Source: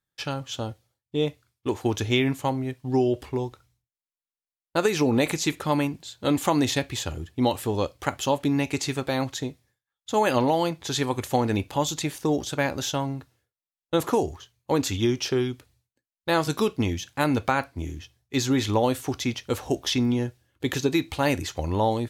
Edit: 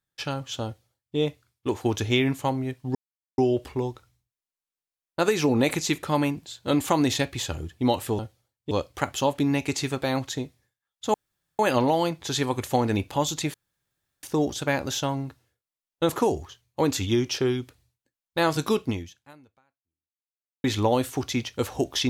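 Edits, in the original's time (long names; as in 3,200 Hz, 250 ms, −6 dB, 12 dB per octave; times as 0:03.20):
0:00.65–0:01.17: duplicate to 0:07.76
0:02.95: splice in silence 0.43 s
0:10.19: splice in room tone 0.45 s
0:12.14: splice in room tone 0.69 s
0:16.77–0:18.55: fade out exponential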